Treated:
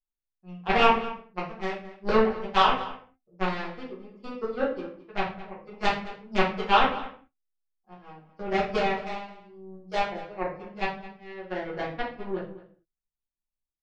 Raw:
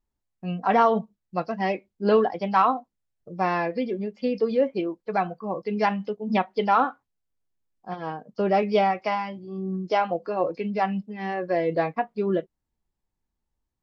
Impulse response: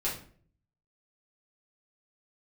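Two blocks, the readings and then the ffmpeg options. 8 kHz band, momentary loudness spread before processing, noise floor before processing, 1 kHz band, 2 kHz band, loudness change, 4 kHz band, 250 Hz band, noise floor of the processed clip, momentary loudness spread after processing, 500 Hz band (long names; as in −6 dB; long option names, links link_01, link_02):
can't be measured, 11 LU, −82 dBFS, −3.0 dB, +2.0 dB, −2.5 dB, +7.0 dB, −6.0 dB, below −85 dBFS, 20 LU, −5.0 dB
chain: -filter_complex "[0:a]aeval=exprs='0.398*(cos(1*acos(clip(val(0)/0.398,-1,1)))-cos(1*PI/2))+0.126*(cos(3*acos(clip(val(0)/0.398,-1,1)))-cos(3*PI/2))':channel_layout=same,asplit=2[link_01][link_02];[link_02]adelay=215.7,volume=-16dB,highshelf=frequency=4000:gain=-4.85[link_03];[link_01][link_03]amix=inputs=2:normalize=0[link_04];[1:a]atrim=start_sample=2205,afade=type=out:start_time=0.29:duration=0.01,atrim=end_sample=13230[link_05];[link_04][link_05]afir=irnorm=-1:irlink=0"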